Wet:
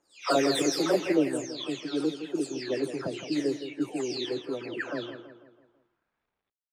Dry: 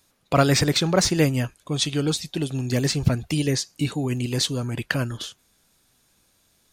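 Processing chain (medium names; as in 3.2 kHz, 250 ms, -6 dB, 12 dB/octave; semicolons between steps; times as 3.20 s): delay that grows with frequency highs early, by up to 466 ms; high-pass sweep 350 Hz -> 3 kHz, 5.17–6.48 s; feedback delay 165 ms, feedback 48%, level -10.5 dB; bit crusher 10-bit; level-controlled noise filter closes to 1.2 kHz, open at -15.5 dBFS; trim -6.5 dB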